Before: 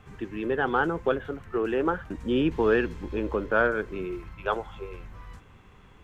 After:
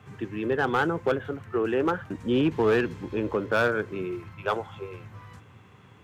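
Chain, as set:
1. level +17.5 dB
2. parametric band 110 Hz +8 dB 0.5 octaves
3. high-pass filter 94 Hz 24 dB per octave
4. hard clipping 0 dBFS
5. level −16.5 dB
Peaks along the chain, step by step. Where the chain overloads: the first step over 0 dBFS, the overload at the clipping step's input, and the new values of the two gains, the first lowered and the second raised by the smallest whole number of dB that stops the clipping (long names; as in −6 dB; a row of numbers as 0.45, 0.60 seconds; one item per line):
+7.0, +7.0, +8.0, 0.0, −16.5 dBFS
step 1, 8.0 dB
step 1 +9.5 dB, step 5 −8.5 dB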